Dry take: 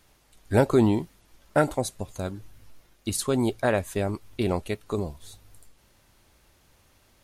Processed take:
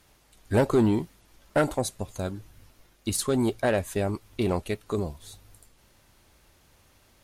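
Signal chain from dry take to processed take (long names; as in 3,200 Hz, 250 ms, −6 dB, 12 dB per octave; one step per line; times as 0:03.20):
soft clipping −14.5 dBFS, distortion −15 dB
harmonic generator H 2 −22 dB, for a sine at −14.5 dBFS
level +1 dB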